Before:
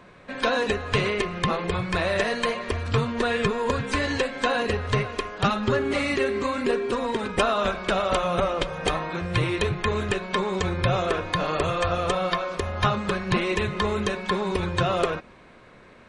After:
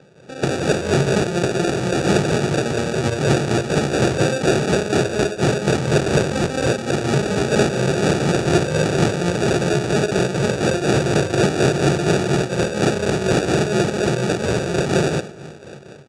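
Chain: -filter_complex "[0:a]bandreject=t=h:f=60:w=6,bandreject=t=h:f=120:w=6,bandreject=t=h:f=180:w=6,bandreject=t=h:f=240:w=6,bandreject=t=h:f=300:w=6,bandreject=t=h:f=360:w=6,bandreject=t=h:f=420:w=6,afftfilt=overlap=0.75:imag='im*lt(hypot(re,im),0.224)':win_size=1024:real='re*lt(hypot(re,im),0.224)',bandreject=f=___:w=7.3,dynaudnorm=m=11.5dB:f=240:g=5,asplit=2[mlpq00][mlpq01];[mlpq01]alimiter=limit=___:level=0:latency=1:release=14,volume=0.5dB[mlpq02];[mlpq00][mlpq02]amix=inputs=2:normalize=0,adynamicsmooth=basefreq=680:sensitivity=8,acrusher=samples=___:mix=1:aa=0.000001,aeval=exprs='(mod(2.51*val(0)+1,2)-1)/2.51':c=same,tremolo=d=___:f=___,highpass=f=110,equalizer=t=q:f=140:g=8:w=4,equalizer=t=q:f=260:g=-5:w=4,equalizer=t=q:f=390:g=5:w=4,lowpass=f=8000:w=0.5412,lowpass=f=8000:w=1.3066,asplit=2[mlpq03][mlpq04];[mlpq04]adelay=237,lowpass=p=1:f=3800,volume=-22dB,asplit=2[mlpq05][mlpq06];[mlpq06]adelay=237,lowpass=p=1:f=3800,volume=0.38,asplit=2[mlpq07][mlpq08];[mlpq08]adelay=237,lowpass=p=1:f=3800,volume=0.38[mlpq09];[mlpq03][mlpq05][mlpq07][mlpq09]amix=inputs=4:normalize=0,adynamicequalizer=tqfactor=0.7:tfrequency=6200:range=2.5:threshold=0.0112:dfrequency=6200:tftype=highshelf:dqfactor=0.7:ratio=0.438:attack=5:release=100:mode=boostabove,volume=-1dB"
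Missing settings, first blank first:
1400, -11dB, 42, 0.53, 4.2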